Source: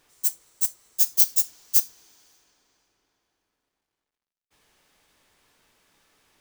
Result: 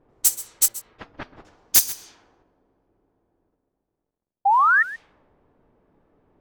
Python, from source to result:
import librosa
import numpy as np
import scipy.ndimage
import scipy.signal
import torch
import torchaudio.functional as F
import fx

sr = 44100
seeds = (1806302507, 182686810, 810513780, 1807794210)

p1 = fx.level_steps(x, sr, step_db=16)
p2 = x + (p1 * 10.0 ** (-1.0 / 20.0))
p3 = fx.spec_paint(p2, sr, seeds[0], shape='rise', start_s=4.45, length_s=0.38, low_hz=750.0, high_hz=1900.0, level_db=-25.0)
p4 = fx.fold_sine(p3, sr, drive_db=11, ceiling_db=3.0)
p5 = fx.air_absorb(p4, sr, metres=370.0, at=(0.68, 1.45))
p6 = p5 + fx.echo_single(p5, sr, ms=133, db=-16.5, dry=0)
p7 = fx.env_lowpass(p6, sr, base_hz=530.0, full_db=-12.5)
y = p7 * 10.0 ** (-6.0 / 20.0)